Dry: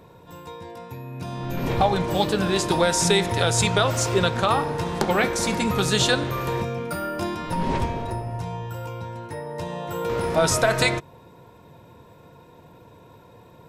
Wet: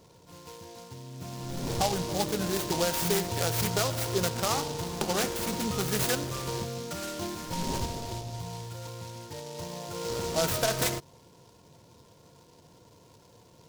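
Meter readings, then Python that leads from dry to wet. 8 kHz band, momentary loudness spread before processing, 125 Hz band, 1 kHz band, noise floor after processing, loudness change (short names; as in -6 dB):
-4.5 dB, 15 LU, -7.5 dB, -9.0 dB, -57 dBFS, -7.0 dB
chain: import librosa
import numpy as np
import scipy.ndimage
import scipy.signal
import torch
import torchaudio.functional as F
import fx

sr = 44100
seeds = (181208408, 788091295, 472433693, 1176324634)

y = fx.noise_mod_delay(x, sr, seeds[0], noise_hz=4600.0, depth_ms=0.11)
y = y * 10.0 ** (-7.5 / 20.0)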